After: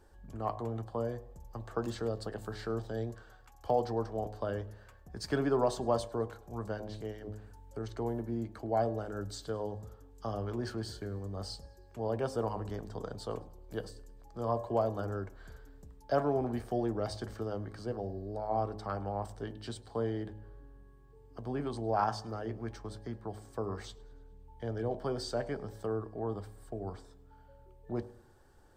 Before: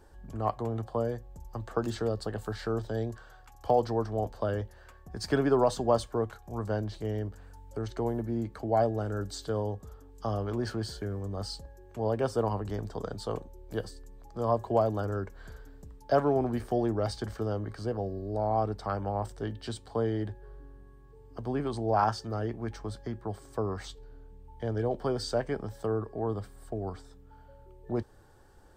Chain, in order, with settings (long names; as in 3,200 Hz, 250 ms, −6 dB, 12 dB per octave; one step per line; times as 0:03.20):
hum removal 53.06 Hz, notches 21
feedback echo with a swinging delay time 105 ms, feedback 52%, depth 79 cents, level −24 dB
level −4 dB